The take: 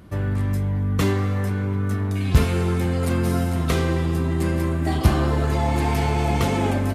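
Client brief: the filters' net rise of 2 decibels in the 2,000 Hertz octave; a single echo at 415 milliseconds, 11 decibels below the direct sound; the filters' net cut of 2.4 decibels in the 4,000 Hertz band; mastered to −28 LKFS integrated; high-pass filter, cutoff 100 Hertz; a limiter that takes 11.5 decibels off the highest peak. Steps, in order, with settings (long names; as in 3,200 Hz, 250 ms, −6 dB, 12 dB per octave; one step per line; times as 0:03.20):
high-pass filter 100 Hz
parametric band 2,000 Hz +3.5 dB
parametric band 4,000 Hz −4.5 dB
brickwall limiter −17.5 dBFS
single-tap delay 415 ms −11 dB
level −1.5 dB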